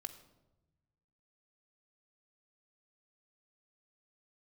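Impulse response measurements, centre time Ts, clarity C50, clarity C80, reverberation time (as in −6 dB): 10 ms, 12.0 dB, 13.5 dB, 1.0 s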